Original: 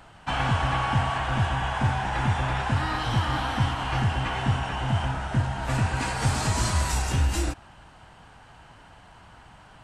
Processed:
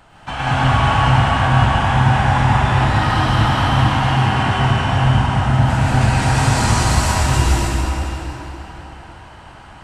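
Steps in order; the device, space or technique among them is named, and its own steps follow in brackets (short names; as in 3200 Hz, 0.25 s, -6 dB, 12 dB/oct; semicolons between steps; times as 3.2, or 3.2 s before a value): 3.8–4.38 HPF 110 Hz; cathedral (reverb RT60 4.1 s, pre-delay 98 ms, DRR -8.5 dB); gain +1 dB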